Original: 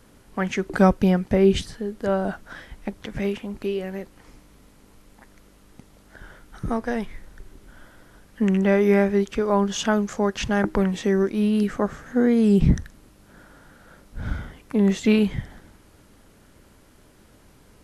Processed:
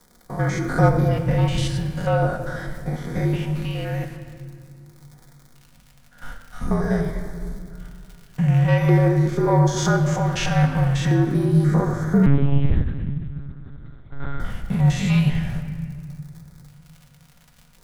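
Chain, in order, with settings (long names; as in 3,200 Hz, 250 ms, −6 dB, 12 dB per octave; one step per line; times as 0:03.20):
spectrum averaged block by block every 100 ms
noise gate −45 dBFS, range −13 dB
in parallel at −1.5 dB: downward compressor, threshold −31 dBFS, peak gain reduction 17 dB
on the sum: soft clipping −13 dBFS, distortion −17 dB
surface crackle 91 per second −39 dBFS
auto-filter notch square 0.45 Hz 420–2,800 Hz
frequency shifter −52 Hz
on a send at −2 dB: convolution reverb RT60 2.0 s, pre-delay 4 ms
0:12.26–0:14.40: on the sum: one-pitch LPC vocoder at 8 kHz 140 Hz
level +2.5 dB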